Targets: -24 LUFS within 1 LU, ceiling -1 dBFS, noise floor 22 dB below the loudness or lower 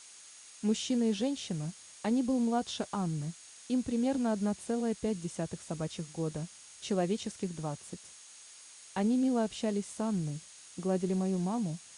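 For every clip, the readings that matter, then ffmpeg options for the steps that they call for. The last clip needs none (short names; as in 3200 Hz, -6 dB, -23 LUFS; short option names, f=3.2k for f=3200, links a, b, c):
steady tone 6600 Hz; tone level -57 dBFS; noise floor -53 dBFS; noise floor target -56 dBFS; loudness -33.5 LUFS; peak -20.0 dBFS; loudness target -24.0 LUFS
-> -af "bandreject=f=6.6k:w=30"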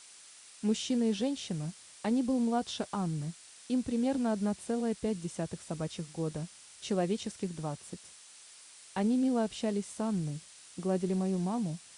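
steady tone none; noise floor -54 dBFS; noise floor target -56 dBFS
-> -af "afftdn=nr=6:nf=-54"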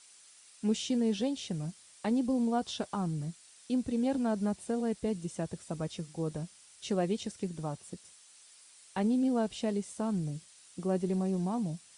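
noise floor -58 dBFS; loudness -33.5 LUFS; peak -20.0 dBFS; loudness target -24.0 LUFS
-> -af "volume=9.5dB"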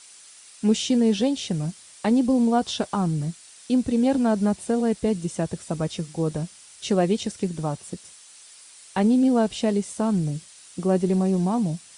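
loudness -24.0 LUFS; peak -10.5 dBFS; noise floor -49 dBFS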